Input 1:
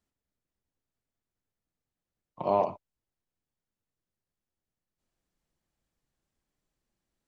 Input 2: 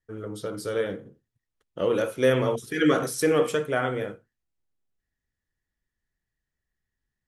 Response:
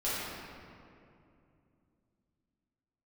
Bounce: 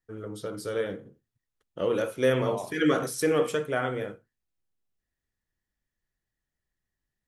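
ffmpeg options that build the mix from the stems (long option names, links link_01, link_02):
-filter_complex "[0:a]volume=-10.5dB[link_01];[1:a]volume=-2.5dB[link_02];[link_01][link_02]amix=inputs=2:normalize=0"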